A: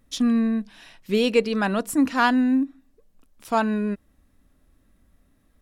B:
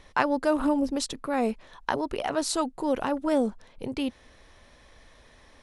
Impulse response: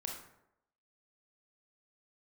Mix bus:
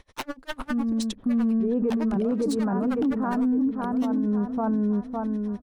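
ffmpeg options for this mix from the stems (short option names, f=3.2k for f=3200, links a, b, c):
-filter_complex "[0:a]lowpass=f=1.2k:w=0.5412,lowpass=f=1.2k:w=1.3066,equalizer=f=110:w=0.31:g=10.5,adelay=500,volume=-1.5dB,asplit=2[a][b];[b]volume=-3.5dB[c];[1:a]aeval=exprs='0.0631*(abs(mod(val(0)/0.0631+3,4)-2)-1)':c=same,aeval=exprs='val(0)*pow(10,-32*(0.5-0.5*cos(2*PI*9.9*n/s))/20)':c=same,volume=2dB,asplit=2[d][e];[e]apad=whole_len=269587[f];[a][f]sidechaincompress=threshold=-43dB:ratio=4:attack=8.6:release=351[g];[c]aecho=0:1:558|1116|1674|2232|2790|3348:1|0.44|0.194|0.0852|0.0375|0.0165[h];[g][d][h]amix=inputs=3:normalize=0,alimiter=limit=-18dB:level=0:latency=1:release=45"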